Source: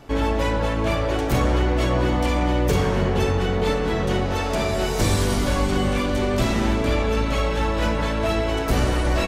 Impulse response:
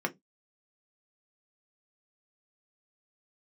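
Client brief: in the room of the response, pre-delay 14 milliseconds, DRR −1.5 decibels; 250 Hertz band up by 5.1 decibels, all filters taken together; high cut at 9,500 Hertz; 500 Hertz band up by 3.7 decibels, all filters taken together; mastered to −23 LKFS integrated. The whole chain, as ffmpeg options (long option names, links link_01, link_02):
-filter_complex "[0:a]lowpass=9500,equalizer=frequency=250:width_type=o:gain=5.5,equalizer=frequency=500:width_type=o:gain=3,asplit=2[link_01][link_02];[1:a]atrim=start_sample=2205,adelay=14[link_03];[link_02][link_03]afir=irnorm=-1:irlink=0,volume=-5.5dB[link_04];[link_01][link_04]amix=inputs=2:normalize=0,volume=-8dB"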